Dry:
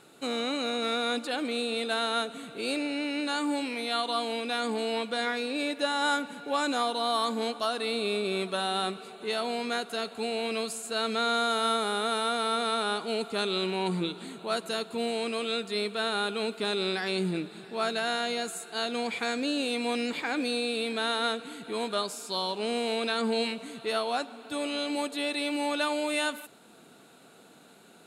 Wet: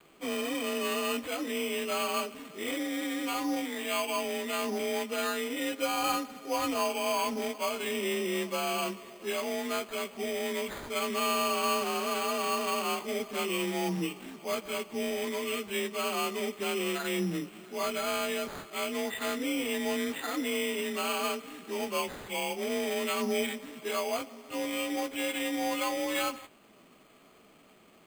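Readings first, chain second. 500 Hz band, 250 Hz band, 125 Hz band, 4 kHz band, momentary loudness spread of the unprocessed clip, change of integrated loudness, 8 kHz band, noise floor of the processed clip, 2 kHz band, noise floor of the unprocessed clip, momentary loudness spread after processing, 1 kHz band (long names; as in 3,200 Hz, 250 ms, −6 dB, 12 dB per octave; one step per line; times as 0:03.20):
−1.5 dB, −1.5 dB, −2.5 dB, −4.5 dB, 5 LU, −2.0 dB, +3.0 dB, −58 dBFS, −2.0 dB, −55 dBFS, 6 LU, −3.0 dB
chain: partials spread apart or drawn together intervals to 91%
pitch vibrato 0.85 Hz 23 cents
elliptic low-pass filter 7,800 Hz
bad sample-rate conversion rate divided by 8×, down none, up hold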